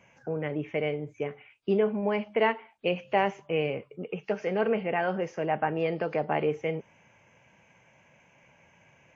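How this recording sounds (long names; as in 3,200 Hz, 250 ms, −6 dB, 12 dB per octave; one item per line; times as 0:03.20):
WMA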